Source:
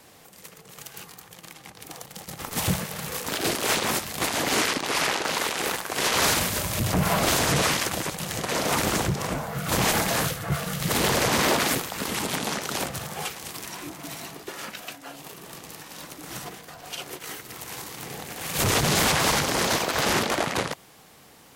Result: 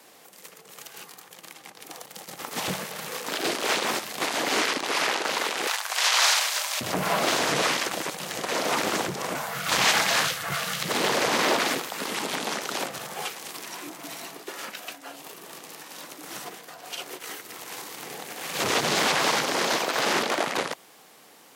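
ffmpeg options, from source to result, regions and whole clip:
-filter_complex "[0:a]asettb=1/sr,asplit=3[s0][s1][s2];[s0]atrim=end=5.674[s3];[s1]atrim=start=5.67:end=6.81,asetpts=PTS-STARTPTS,afade=t=in:d=0.004:c=qsin,afade=t=out:st=1.136:d=0.004:c=qsin,highpass=f=680:w=0.5412,highpass=f=680:w=1.3066,highshelf=f=3700:g=9.5[s4];[s2]atrim=start=6.806[s5];[s3][s4]acrossfade=d=0.004:c1=hsin:c2=qsin[s6];[s6][s5]acrossfade=d=0.004:c1=qsin:c2=hsin,asettb=1/sr,asplit=3[s7][s8][s9];[s7]atrim=end=9.354[s10];[s8]atrim=start=9.35:end=10.83,asetpts=PTS-STARTPTS,afade=t=in:d=0.004:c=qsin,afade=t=out:st=1.476:d=0.004:c=qsin,equalizer=f=340:w=0.48:g=-12,acontrast=79[s11];[s9]atrim=start=10.826[s12];[s10][s11]acrossfade=d=0.004:c1=hsin:c2=qsin[s13];[s13][s12]acrossfade=d=0.004:c1=qsin:c2=hsin,acrossover=split=6500[s14][s15];[s15]acompressor=threshold=0.0141:ratio=4:attack=1:release=60[s16];[s14][s16]amix=inputs=2:normalize=0,highpass=270"

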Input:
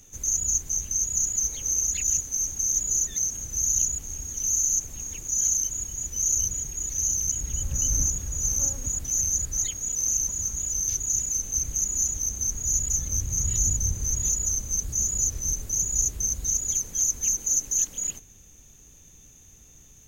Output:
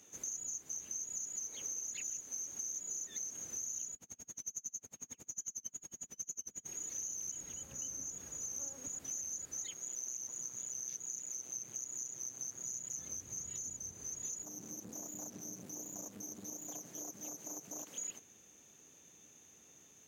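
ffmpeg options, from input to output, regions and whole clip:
-filter_complex "[0:a]asettb=1/sr,asplit=3[s0][s1][s2];[s0]atrim=end=3.944[s3];[s1]atrim=start=3.94:end=6.66,asetpts=PTS-STARTPTS,afade=t=in:d=0.004:c=qsin,afade=t=out:st=2.716:d=0.004:c=qsin,aeval=exprs='val(0)+0.00891*(sin(2*PI*50*n/s)+sin(2*PI*2*50*n/s)/2+sin(2*PI*3*50*n/s)/3+sin(2*PI*4*50*n/s)/4+sin(2*PI*5*50*n/s)/5)':c=same,aeval=exprs='val(0)*pow(10,-37*(0.5-0.5*cos(2*PI*11*n/s))/20)':c=same[s4];[s2]atrim=start=6.656[s5];[s3][s4]acrossfade=d=0.004:c1=hsin:c2=qsin[s6];[s6][s5]acrossfade=d=0.004:c1=qsin:c2=hsin,asettb=1/sr,asplit=3[s7][s8][s9];[s7]atrim=end=9.744[s10];[s8]atrim=start=9.74:end=12.98,asetpts=PTS-STARTPTS,afade=t=in:d=0.004:c=qsin,afade=t=out:st=3.236:d=0.004:c=qsin,aeval=exprs='val(0)*sin(2*PI*63*n/s)':c=same,highpass=f=200:p=1[s11];[s9]atrim=start=12.976[s12];[s10][s11]acrossfade=d=0.004:c1=hsin:c2=qsin[s13];[s13][s12]acrossfade=d=0.004:c1=qsin:c2=hsin,asettb=1/sr,asplit=3[s14][s15][s16];[s14]atrim=end=14.434[s17];[s15]atrim=start=14.43:end=17.87,asetpts=PTS-STARTPTS,afade=t=in:d=0.004:c=qsin,afade=t=out:st=3.436:d=0.004:c=qsin,aeval=exprs='val(0)*sin(2*PI*150*n/s)':c=same,acompressor=threshold=0.0251:ratio=2:attack=3.2:release=140:knee=1:detection=peak,aeval=exprs='clip(val(0),-1,0.0075)':c=same[s18];[s16]atrim=start=17.866[s19];[s17][s18]acrossfade=d=0.004:c1=hsin:c2=qsin[s20];[s20][s19]acrossfade=d=0.004:c1=qsin:c2=hsin,acompressor=threshold=0.0282:ratio=6,highpass=270,highshelf=f=5200:g=-9,volume=0.75"

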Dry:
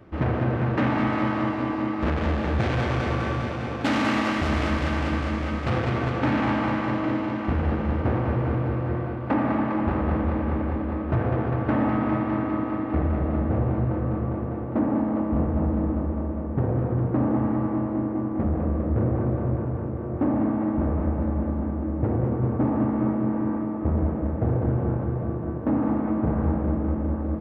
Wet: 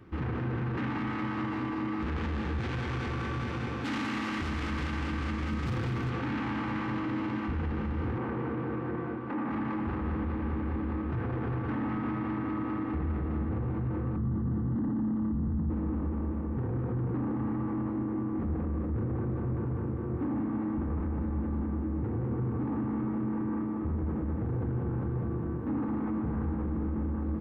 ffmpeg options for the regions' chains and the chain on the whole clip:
-filter_complex "[0:a]asettb=1/sr,asplit=3[s0][s1][s2];[s0]atrim=end=5.474[s3];[s1]atrim=start=5.47:end=6.1,asetpts=PTS-STARTPTS,afade=t=in:d=0.004:c=qsin,afade=t=out:st=0.626:d=0.004:c=qsin,highpass=f=120:p=1,asoftclip=type=hard:threshold=0.0891,bass=f=250:g=8,treble=f=4000:g=3[s4];[s2]atrim=start=6.096[s5];[s3][s4]acrossfade=d=0.004:c1=hsin:c2=qsin[s6];[s6][s5]acrossfade=d=0.004:c1=qsin:c2=hsin,asettb=1/sr,asplit=3[s7][s8][s9];[s7]atrim=end=8.184[s10];[s8]atrim=start=8.18:end=9.51,asetpts=PTS-STARTPTS,afade=t=in:d=0.004:c=qsin,afade=t=out:st=1.326:d=0.004:c=qsin,highpass=190,aemphasis=mode=reproduction:type=75fm,asplit=2[s11][s12];[s12]adelay=13,volume=0.299[s13];[s11][s13]amix=inputs=2:normalize=0,atrim=end_sample=58653[s14];[s9]atrim=start=9.506[s15];[s10][s14]acrossfade=d=0.004:c1=hsin:c2=qsin[s16];[s16][s15]acrossfade=d=0.004:c1=qsin:c2=hsin,asettb=1/sr,asplit=3[s17][s18][s19];[s17]atrim=end=14.164[s20];[s18]atrim=start=14.16:end=15.7,asetpts=PTS-STARTPTS,afade=t=in:d=0.004:c=qsin,afade=t=out:st=1.536:d=0.004:c=qsin,asuperstop=centerf=2400:order=4:qfactor=3.2,lowshelf=f=290:t=q:w=1.5:g=9[s21];[s19]atrim=start=15.696[s22];[s20][s21]acrossfade=d=0.004:c1=hsin:c2=qsin[s23];[s23][s22]acrossfade=d=0.004:c1=qsin:c2=hsin,bandreject=f=600:w=19,alimiter=limit=0.075:level=0:latency=1:release=15,equalizer=f=630:t=o:w=0.48:g=-12,volume=0.794"

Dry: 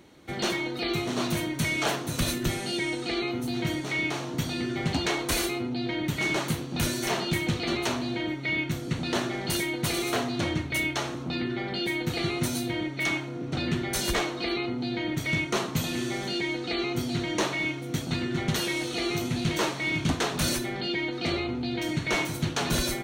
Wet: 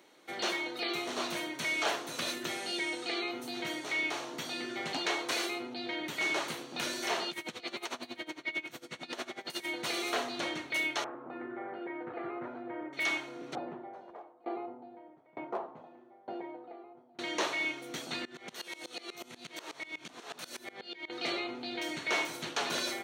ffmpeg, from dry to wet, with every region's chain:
-filter_complex "[0:a]asettb=1/sr,asplit=3[s0][s1][s2];[s0]atrim=end=7.304[s3];[s1]atrim=start=7.3:end=9.65,asetpts=PTS-STARTPTS,afade=t=in:d=0.004:c=qsin,afade=t=out:st=2.346:d=0.004:c=qsin,aecho=1:1:48|438|696|820:0.316|0.168|0.133|0.1,atrim=end_sample=103635,aeval=exprs='val(0)*pow(10,-21*(0.5-0.5*cos(2*PI*11*n/s))/20)':c=same[s4];[s2]atrim=start=9.646[s5];[s3][s4]acrossfade=d=0.004:c1=hsin:c2=qsin[s6];[s6][s5]acrossfade=d=0.004:c1=qsin:c2=hsin,asettb=1/sr,asplit=3[s7][s8][s9];[s7]atrim=end=11.044[s10];[s8]atrim=start=11.04:end=12.93,asetpts=PTS-STARTPTS,afade=t=in:d=0.004:c=qsin,afade=t=out:st=1.886:d=0.004:c=qsin,lowpass=f=1500:w=0.5412,lowpass=f=1500:w=1.3066,equalizer=f=180:w=2.6:g=-9.5[s11];[s9]atrim=start=12.926[s12];[s10][s11]acrossfade=d=0.004:c1=hsin:c2=qsin[s13];[s13][s12]acrossfade=d=0.004:c1=qsin:c2=hsin,asettb=1/sr,asplit=3[s14][s15][s16];[s14]atrim=end=13.554[s17];[s15]atrim=start=13.55:end=17.19,asetpts=PTS-STARTPTS,afade=t=in:d=0.004:c=qsin,afade=t=out:st=3.636:d=0.004:c=qsin,lowpass=f=810:t=q:w=2.4,asoftclip=type=hard:threshold=0.15,aeval=exprs='val(0)*pow(10,-26*if(lt(mod(1.1*n/s,1),2*abs(1.1)/1000),1-mod(1.1*n/s,1)/(2*abs(1.1)/1000),(mod(1.1*n/s,1)-2*abs(1.1)/1000)/(1-2*abs(1.1)/1000))/20)':c=same[s18];[s16]atrim=start=17.186[s19];[s17][s18]acrossfade=d=0.004:c1=hsin:c2=qsin[s20];[s20][s19]acrossfade=d=0.004:c1=qsin:c2=hsin,asettb=1/sr,asplit=3[s21][s22][s23];[s21]atrim=end=18.254[s24];[s22]atrim=start=18.25:end=21.1,asetpts=PTS-STARTPTS,afade=t=in:d=0.004:c=qsin,afade=t=out:st=2.846:d=0.004:c=qsin,asplit=2[s25][s26];[s26]adelay=16,volume=0.211[s27];[s25][s27]amix=inputs=2:normalize=0,atrim=end_sample=125685,acompressor=threshold=0.0398:ratio=4:attack=3.2:release=140:knee=1:detection=peak,aeval=exprs='val(0)*pow(10,-22*if(lt(mod(-8.2*n/s,1),2*abs(-8.2)/1000),1-mod(-8.2*n/s,1)/(2*abs(-8.2)/1000),(mod(-8.2*n/s,1)-2*abs(-8.2)/1000)/(1-2*abs(-8.2)/1000))/20)':c=same[s28];[s23]atrim=start=21.096[s29];[s24][s28]acrossfade=d=0.004:c1=hsin:c2=qsin[s30];[s30][s29]acrossfade=d=0.004:c1=qsin:c2=hsin,highpass=440,acrossover=split=6500[s31][s32];[s32]acompressor=threshold=0.00501:ratio=4:attack=1:release=60[s33];[s31][s33]amix=inputs=2:normalize=0,volume=0.708"

